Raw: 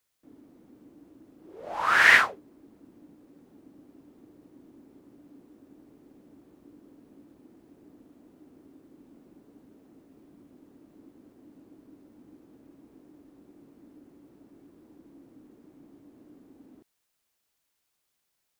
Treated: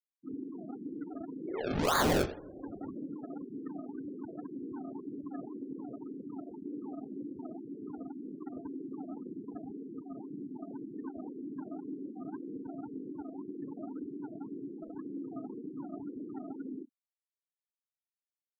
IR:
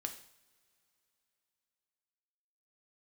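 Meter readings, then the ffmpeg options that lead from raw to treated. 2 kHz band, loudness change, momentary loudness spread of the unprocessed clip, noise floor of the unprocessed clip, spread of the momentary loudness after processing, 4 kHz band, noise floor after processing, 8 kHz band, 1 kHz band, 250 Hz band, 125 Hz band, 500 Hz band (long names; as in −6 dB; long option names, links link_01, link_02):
−18.5 dB, −20.0 dB, 16 LU, −79 dBFS, 7 LU, −7.5 dB, below −85 dBFS, can't be measured, −6.5 dB, +12.5 dB, +12.5 dB, +7.0 dB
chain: -filter_complex "[0:a]acrossover=split=1800[link_01][link_02];[link_02]adynamicsmooth=sensitivity=6:basefreq=7000[link_03];[link_01][link_03]amix=inputs=2:normalize=0,aeval=exprs='0.168*(abs(mod(val(0)/0.168+3,4)-2)-1)':channel_layout=same,bandreject=frequency=60:width_type=h:width=6,bandreject=frequency=120:width_type=h:width=6,bandreject=frequency=180:width_type=h:width=6,bandreject=frequency=240:width_type=h:width=6,bandreject=frequency=300:width_type=h:width=6,bandreject=frequency=360:width_type=h:width=6,bandreject=frequency=420:width_type=h:width=6,bandreject=frequency=480:width_type=h:width=6,bandreject=frequency=540:width_type=h:width=6,acrusher=samples=31:mix=1:aa=0.000001:lfo=1:lforange=31:lforate=1.9,asplit=2[link_04][link_05];[1:a]atrim=start_sample=2205,lowpass=8400,highshelf=frequency=6100:gain=-5[link_06];[link_05][link_06]afir=irnorm=-1:irlink=0,volume=-0.5dB[link_07];[link_04][link_07]amix=inputs=2:normalize=0,adynamicequalizer=threshold=0.00282:dfrequency=390:dqfactor=1.1:tfrequency=390:tqfactor=1.1:attack=5:release=100:ratio=0.375:range=2:mode=boostabove:tftype=bell,afftfilt=real='re*gte(hypot(re,im),0.00794)':imag='im*gte(hypot(re,im),0.00794)':win_size=1024:overlap=0.75,acompressor=threshold=-45dB:ratio=2.5,highshelf=frequency=5400:gain=7,volume=8dB"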